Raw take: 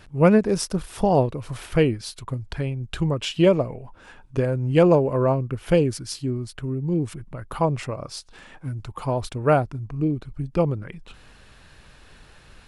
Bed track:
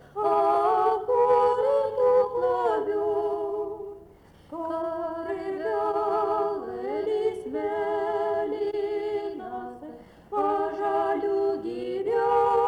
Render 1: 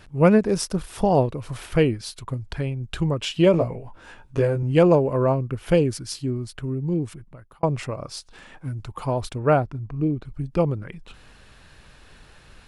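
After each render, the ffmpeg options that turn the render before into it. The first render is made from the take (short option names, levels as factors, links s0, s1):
-filter_complex "[0:a]asettb=1/sr,asplit=3[s0][s1][s2];[s0]atrim=end=3.524[s3];[s1]atrim=start=3.52:end=4.63,asetpts=PTS-STARTPTS,afade=t=in:d=0.004:c=qsin,afade=t=out:st=1.106:d=0.004:c=qsin,asplit=2[s4][s5];[s5]adelay=18,volume=0.708[s6];[s4][s6]amix=inputs=2:normalize=0,atrim=end_sample=48951[s7];[s2]atrim=start=4.626[s8];[s3][s7]acrossfade=d=0.004:c1=hsin:c2=qsin[s9];[s9][s8]acrossfade=d=0.004:c1=qsin:c2=hsin,asettb=1/sr,asplit=3[s10][s11][s12];[s10]atrim=end=9.394[s13];[s11]atrim=start=9.39:end=10.25,asetpts=PTS-STARTPTS,afade=t=in:d=0.004:c=qsin,afade=t=out:st=0.856:d=0.004:c=qsin,lowpass=f=3600:p=1[s14];[s12]atrim=start=10.246[s15];[s13][s14]acrossfade=d=0.004:c1=hsin:c2=qsin[s16];[s16][s15]acrossfade=d=0.004:c1=qsin:c2=hsin,asplit=2[s17][s18];[s17]atrim=end=7.63,asetpts=PTS-STARTPTS,afade=t=out:st=6.88:d=0.75[s19];[s18]atrim=start=7.63,asetpts=PTS-STARTPTS,afade=t=in:d=0.004:c=hsin[s20];[s19][s20]concat=n=2:v=0:a=1"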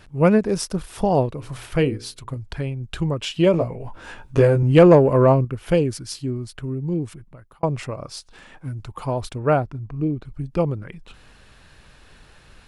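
-filter_complex "[0:a]asettb=1/sr,asplit=3[s0][s1][s2];[s0]atrim=end=1.324[s3];[s1]atrim=start=1.32:end=2.37,asetpts=PTS-STARTPTS,afade=t=in:d=0.004:c=qsin,afade=t=out:st=1.046:d=0.004:c=qsin,bandreject=f=60:t=h:w=6,bandreject=f=120:t=h:w=6,bandreject=f=180:t=h:w=6,bandreject=f=240:t=h:w=6,bandreject=f=300:t=h:w=6,bandreject=f=360:t=h:w=6,bandreject=f=420:t=h:w=6,bandreject=f=480:t=h:w=6,bandreject=f=540:t=h:w=6[s4];[s2]atrim=start=2.366[s5];[s3][s4]acrossfade=d=0.004:c1=hsin:c2=qsin[s6];[s6][s5]acrossfade=d=0.004:c1=qsin:c2=hsin,asettb=1/sr,asplit=3[s7][s8][s9];[s7]atrim=end=3.804[s10];[s8]atrim=start=3.8:end=5.45,asetpts=PTS-STARTPTS,afade=t=in:d=0.004:c=qsin,afade=t=out:st=1.646:d=0.004:c=qsin,acontrast=60[s11];[s9]atrim=start=5.446[s12];[s10][s11]acrossfade=d=0.004:c1=hsin:c2=qsin[s13];[s13][s12]acrossfade=d=0.004:c1=qsin:c2=hsin"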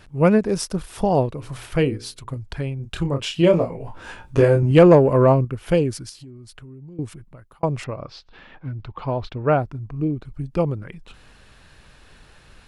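-filter_complex "[0:a]asettb=1/sr,asplit=3[s0][s1][s2];[s0]atrim=end=2.764[s3];[s1]atrim=start=2.76:end=4.71,asetpts=PTS-STARTPTS,afade=t=in:d=0.004:c=qsin,afade=t=out:st=1.946:d=0.004:c=qsin,asplit=2[s4][s5];[s5]adelay=29,volume=0.501[s6];[s4][s6]amix=inputs=2:normalize=0,atrim=end_sample=85995[s7];[s2]atrim=start=4.706[s8];[s3][s7]acrossfade=d=0.004:c1=hsin:c2=qsin[s9];[s9][s8]acrossfade=d=0.004:c1=qsin:c2=hsin,asettb=1/sr,asplit=3[s10][s11][s12];[s10]atrim=end=6.094[s13];[s11]atrim=start=6.09:end=6.99,asetpts=PTS-STARTPTS,afade=t=in:d=0.004:c=qsin,afade=t=out:st=0.896:d=0.004:c=qsin,acompressor=threshold=0.0126:ratio=8:attack=3.2:release=140:knee=1:detection=peak[s14];[s12]atrim=start=6.986[s15];[s13][s14]acrossfade=d=0.004:c1=hsin:c2=qsin[s16];[s16][s15]acrossfade=d=0.004:c1=qsin:c2=hsin,asettb=1/sr,asplit=3[s17][s18][s19];[s17]atrim=end=7.844[s20];[s18]atrim=start=7.84:end=9.6,asetpts=PTS-STARTPTS,afade=t=in:d=0.004:c=qsin,afade=t=out:st=1.756:d=0.004:c=qsin,lowpass=f=4200:w=0.5412,lowpass=f=4200:w=1.3066[s21];[s19]atrim=start=9.596[s22];[s20][s21]acrossfade=d=0.004:c1=hsin:c2=qsin[s23];[s23][s22]acrossfade=d=0.004:c1=qsin:c2=hsin"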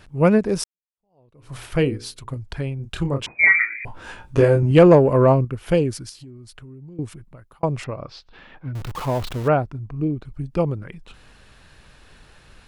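-filter_complex "[0:a]asettb=1/sr,asplit=3[s0][s1][s2];[s0]atrim=end=3.264[s3];[s1]atrim=start=3.26:end=3.85,asetpts=PTS-STARTPTS,afade=t=in:d=0.004:c=qsin,afade=t=out:st=0.586:d=0.004:c=qsin,lowpass=f=2100:t=q:w=0.5098,lowpass=f=2100:t=q:w=0.6013,lowpass=f=2100:t=q:w=0.9,lowpass=f=2100:t=q:w=2.563,afreqshift=-2500[s4];[s2]atrim=start=3.846[s5];[s3][s4]acrossfade=d=0.004:c1=hsin:c2=qsin[s6];[s6][s5]acrossfade=d=0.004:c1=qsin:c2=hsin,asettb=1/sr,asplit=3[s7][s8][s9];[s7]atrim=end=8.754[s10];[s8]atrim=start=8.75:end=9.48,asetpts=PTS-STARTPTS,afade=t=in:d=0.004:c=qsin,afade=t=out:st=0.726:d=0.004:c=qsin,aeval=exprs='val(0)+0.5*0.0355*sgn(val(0))':c=same[s11];[s9]atrim=start=9.476[s12];[s10][s11]acrossfade=d=0.004:c1=hsin:c2=qsin[s13];[s13][s12]acrossfade=d=0.004:c1=qsin:c2=hsin,asplit=2[s14][s15];[s14]atrim=end=0.64,asetpts=PTS-STARTPTS,afade=t=out:st=0.636:d=0.004:c=hsin[s16];[s15]atrim=start=0.64,asetpts=PTS-STARTPTS,afade=t=in:d=0.91:c=exp[s17];[s16][s17]concat=n=2:v=0:a=1"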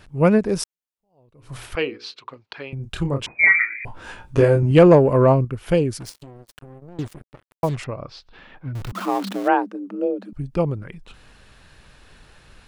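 -filter_complex "[0:a]asettb=1/sr,asplit=3[s0][s1][s2];[s0]atrim=end=1.754[s3];[s1]atrim=start=1.75:end=2.73,asetpts=PTS-STARTPTS,afade=t=in:d=0.004:c=qsin,afade=t=out:st=0.976:d=0.004:c=qsin,highpass=450,equalizer=f=640:t=q:w=4:g=-4,equalizer=f=1200:t=q:w=4:g=3,equalizer=f=2600:t=q:w=4:g=5,equalizer=f=4100:t=q:w=4:g=3,lowpass=f=5000:w=0.5412,lowpass=f=5000:w=1.3066[s4];[s2]atrim=start=2.726[s5];[s3][s4]acrossfade=d=0.004:c1=hsin:c2=qsin[s6];[s6][s5]acrossfade=d=0.004:c1=qsin:c2=hsin,asettb=1/sr,asplit=3[s7][s8][s9];[s7]atrim=end=6.004[s10];[s8]atrim=start=6:end=7.76,asetpts=PTS-STARTPTS,afade=t=in:d=0.004:c=qsin,afade=t=out:st=1.756:d=0.004:c=qsin,acrusher=bits=5:mix=0:aa=0.5[s11];[s9]atrim=start=7.756[s12];[s10][s11]acrossfade=d=0.004:c1=hsin:c2=qsin[s13];[s13][s12]acrossfade=d=0.004:c1=qsin:c2=hsin,asettb=1/sr,asplit=3[s14][s15][s16];[s14]atrim=end=8.924[s17];[s15]atrim=start=8.92:end=10.33,asetpts=PTS-STARTPTS,afade=t=in:d=0.004:c=qsin,afade=t=out:st=1.406:d=0.004:c=qsin,afreqshift=180[s18];[s16]atrim=start=10.326[s19];[s17][s18]acrossfade=d=0.004:c1=hsin:c2=qsin[s20];[s20][s19]acrossfade=d=0.004:c1=qsin:c2=hsin"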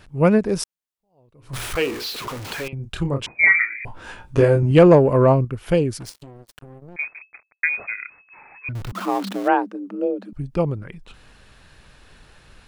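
-filter_complex "[0:a]asettb=1/sr,asplit=3[s0][s1][s2];[s0]atrim=end=1.534[s3];[s1]atrim=start=1.53:end=2.68,asetpts=PTS-STARTPTS,afade=t=in:d=0.004:c=qsin,afade=t=out:st=1.146:d=0.004:c=qsin,aeval=exprs='val(0)+0.5*0.0447*sgn(val(0))':c=same[s4];[s2]atrim=start=2.676[s5];[s3][s4]acrossfade=d=0.004:c1=hsin:c2=qsin[s6];[s6][s5]acrossfade=d=0.004:c1=qsin:c2=hsin,asettb=1/sr,asplit=3[s7][s8][s9];[s7]atrim=end=6.964[s10];[s8]atrim=start=6.96:end=8.69,asetpts=PTS-STARTPTS,afade=t=in:d=0.004:c=qsin,afade=t=out:st=1.726:d=0.004:c=qsin,lowpass=f=2200:t=q:w=0.5098,lowpass=f=2200:t=q:w=0.6013,lowpass=f=2200:t=q:w=0.9,lowpass=f=2200:t=q:w=2.563,afreqshift=-2600[s11];[s9]atrim=start=8.686[s12];[s10][s11]acrossfade=d=0.004:c1=hsin:c2=qsin[s13];[s13][s12]acrossfade=d=0.004:c1=qsin:c2=hsin"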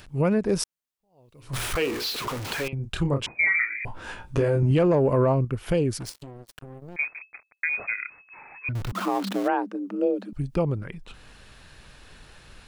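-filter_complex "[0:a]acrossover=split=2400[s0][s1];[s1]acompressor=mode=upward:threshold=0.00251:ratio=2.5[s2];[s0][s2]amix=inputs=2:normalize=0,alimiter=limit=0.2:level=0:latency=1:release=147"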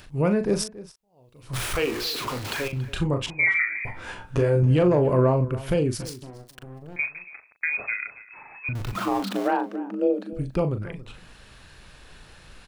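-filter_complex "[0:a]asplit=2[s0][s1];[s1]adelay=39,volume=0.376[s2];[s0][s2]amix=inputs=2:normalize=0,asplit=2[s3][s4];[s4]adelay=279.9,volume=0.141,highshelf=f=4000:g=-6.3[s5];[s3][s5]amix=inputs=2:normalize=0"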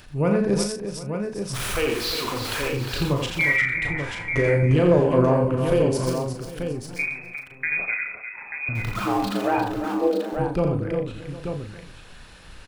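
-filter_complex "[0:a]asplit=2[s0][s1];[s1]adelay=35,volume=0.316[s2];[s0][s2]amix=inputs=2:normalize=0,asplit=2[s3][s4];[s4]aecho=0:1:85|353|755|887:0.531|0.376|0.133|0.447[s5];[s3][s5]amix=inputs=2:normalize=0"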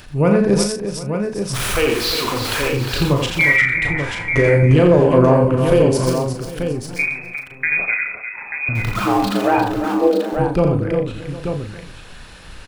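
-af "volume=2.11,alimiter=limit=0.708:level=0:latency=1"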